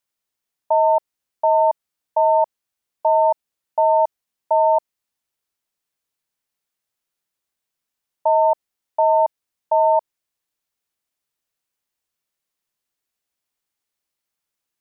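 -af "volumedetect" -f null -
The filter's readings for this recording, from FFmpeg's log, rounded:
mean_volume: -22.8 dB
max_volume: -8.9 dB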